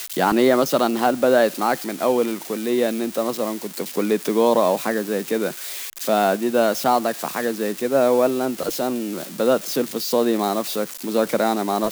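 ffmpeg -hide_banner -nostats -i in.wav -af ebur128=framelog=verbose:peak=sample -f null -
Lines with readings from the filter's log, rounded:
Integrated loudness:
  I:         -21.0 LUFS
  Threshold: -31.0 LUFS
Loudness range:
  LRA:         2.2 LU
  Threshold: -41.4 LUFS
  LRA low:   -22.3 LUFS
  LRA high:  -20.1 LUFS
Sample peak:
  Peak:       -4.7 dBFS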